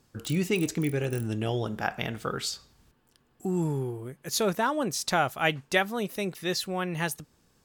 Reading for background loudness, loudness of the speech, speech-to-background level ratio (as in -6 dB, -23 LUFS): -47.5 LUFS, -29.5 LUFS, 18.0 dB